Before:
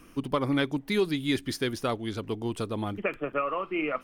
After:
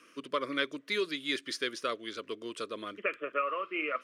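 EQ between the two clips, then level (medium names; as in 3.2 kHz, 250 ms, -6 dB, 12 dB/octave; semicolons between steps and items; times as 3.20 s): band-pass 530–7500 Hz; Butterworth band-stop 810 Hz, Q 1.7; 0.0 dB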